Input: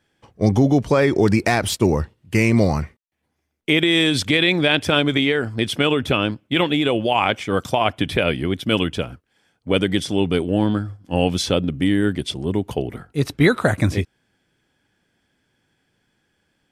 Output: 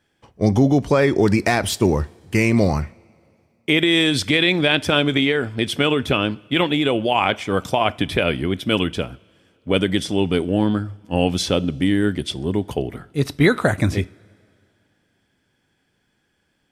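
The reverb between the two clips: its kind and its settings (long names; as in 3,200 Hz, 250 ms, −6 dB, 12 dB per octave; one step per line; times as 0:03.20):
coupled-rooms reverb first 0.37 s, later 2.5 s, from −18 dB, DRR 17.5 dB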